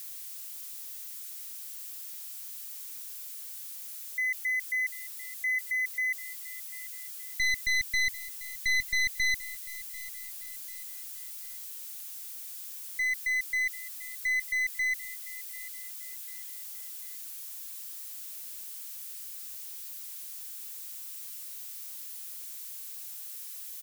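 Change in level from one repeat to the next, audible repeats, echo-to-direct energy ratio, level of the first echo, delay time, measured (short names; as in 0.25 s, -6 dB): -8.5 dB, 3, -17.5 dB, -18.0 dB, 0.743 s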